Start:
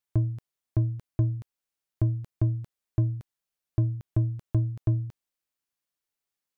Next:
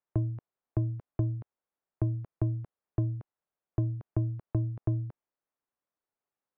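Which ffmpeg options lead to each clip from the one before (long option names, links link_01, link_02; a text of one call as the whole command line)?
ffmpeg -i in.wav -filter_complex "[0:a]lowpass=1100,lowshelf=frequency=240:gain=-9.5,acrossover=split=330|730[link_01][link_02][link_03];[link_01]acompressor=threshold=-30dB:ratio=4[link_04];[link_02]acompressor=threshold=-45dB:ratio=4[link_05];[link_03]acompressor=threshold=-57dB:ratio=4[link_06];[link_04][link_05][link_06]amix=inputs=3:normalize=0,volume=5.5dB" out.wav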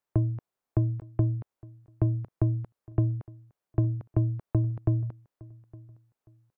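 ffmpeg -i in.wav -af "aecho=1:1:862|1724:0.075|0.021,volume=4dB" out.wav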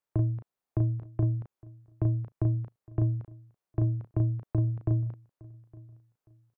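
ffmpeg -i in.wav -filter_complex "[0:a]asplit=2[link_01][link_02];[link_02]adelay=35,volume=-5dB[link_03];[link_01][link_03]amix=inputs=2:normalize=0,volume=-4dB" out.wav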